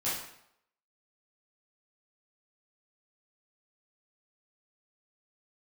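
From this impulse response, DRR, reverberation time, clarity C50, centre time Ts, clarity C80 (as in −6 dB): −10.5 dB, 0.75 s, 1.5 dB, 57 ms, 6.0 dB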